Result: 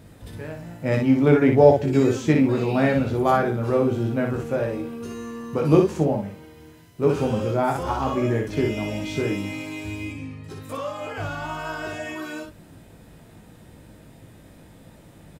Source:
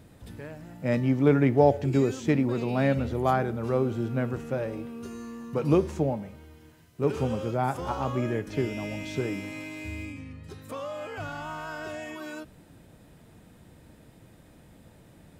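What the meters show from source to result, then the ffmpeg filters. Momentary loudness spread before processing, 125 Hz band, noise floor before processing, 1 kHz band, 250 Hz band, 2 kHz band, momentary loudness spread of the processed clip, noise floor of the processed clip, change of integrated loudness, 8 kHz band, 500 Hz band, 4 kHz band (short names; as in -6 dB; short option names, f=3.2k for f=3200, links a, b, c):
18 LU, +4.0 dB, -55 dBFS, +5.0 dB, +5.5 dB, +5.5 dB, 17 LU, -49 dBFS, +5.5 dB, +5.5 dB, +6.0 dB, +6.0 dB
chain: -af "aecho=1:1:19|60:0.562|0.596,volume=3.5dB"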